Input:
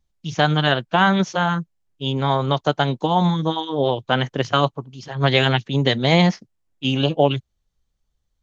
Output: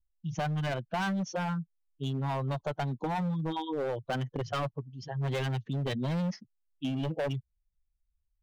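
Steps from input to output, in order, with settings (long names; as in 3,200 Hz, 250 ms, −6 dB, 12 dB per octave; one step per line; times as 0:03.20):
expanding power law on the bin magnitudes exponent 1.8
gain into a clipping stage and back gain 18.5 dB
downward compressor, threshold −24 dBFS, peak gain reduction 4.5 dB
level −5.5 dB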